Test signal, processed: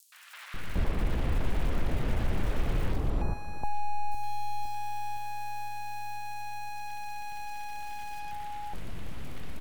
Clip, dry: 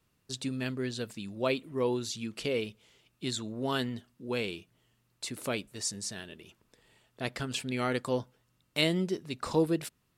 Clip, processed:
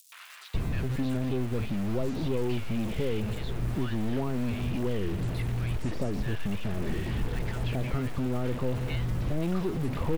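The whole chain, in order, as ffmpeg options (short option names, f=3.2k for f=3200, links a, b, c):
-filter_complex "[0:a]aeval=exprs='val(0)+0.5*0.0422*sgn(val(0))':c=same,crystalizer=i=1.5:c=0,bass=f=250:g=5,treble=f=4k:g=1,aeval=exprs='(tanh(8.91*val(0)+0.35)-tanh(0.35))/8.91':c=same,acrossover=split=320|3200[a][b][c];[a]acompressor=threshold=-40dB:ratio=4[d];[b]acompressor=threshold=-30dB:ratio=4[e];[c]acompressor=threshold=-42dB:ratio=4[f];[d][e][f]amix=inputs=3:normalize=0,aemphasis=mode=reproduction:type=riaa,aeval=exprs='val(0)*gte(abs(val(0)),0.0133)':c=same,acrossover=split=1200|5600[g][h][i];[h]adelay=120[j];[g]adelay=540[k];[k][j][i]amix=inputs=3:normalize=0,volume=-2dB"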